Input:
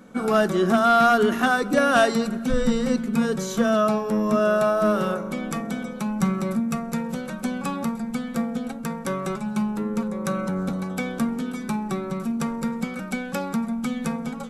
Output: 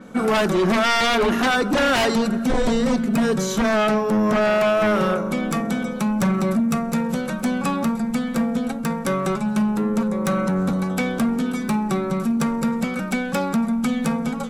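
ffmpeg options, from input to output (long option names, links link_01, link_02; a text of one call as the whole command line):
ffmpeg -i in.wav -af "aeval=exprs='0.299*sin(PI/2*2.24*val(0)/0.299)':channel_layout=same,adynamicequalizer=threshold=0.0178:dfrequency=6600:dqfactor=0.7:tfrequency=6600:tqfactor=0.7:attack=5:release=100:ratio=0.375:range=2:mode=cutabove:tftype=highshelf,volume=-4.5dB" out.wav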